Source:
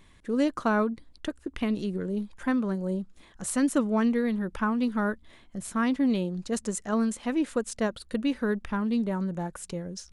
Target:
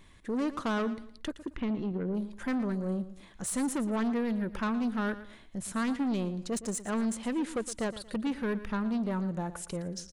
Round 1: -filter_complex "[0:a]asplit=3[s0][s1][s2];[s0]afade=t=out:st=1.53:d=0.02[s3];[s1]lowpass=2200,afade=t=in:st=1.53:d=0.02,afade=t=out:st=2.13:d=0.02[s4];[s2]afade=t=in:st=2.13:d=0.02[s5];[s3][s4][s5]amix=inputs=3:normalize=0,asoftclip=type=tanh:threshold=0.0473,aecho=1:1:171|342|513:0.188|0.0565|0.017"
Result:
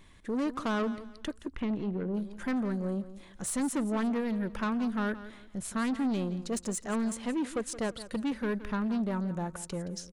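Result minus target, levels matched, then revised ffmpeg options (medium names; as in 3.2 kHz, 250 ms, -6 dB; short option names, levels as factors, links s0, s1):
echo 56 ms late
-filter_complex "[0:a]asplit=3[s0][s1][s2];[s0]afade=t=out:st=1.53:d=0.02[s3];[s1]lowpass=2200,afade=t=in:st=1.53:d=0.02,afade=t=out:st=2.13:d=0.02[s4];[s2]afade=t=in:st=2.13:d=0.02[s5];[s3][s4][s5]amix=inputs=3:normalize=0,asoftclip=type=tanh:threshold=0.0473,aecho=1:1:115|230|345:0.188|0.0565|0.017"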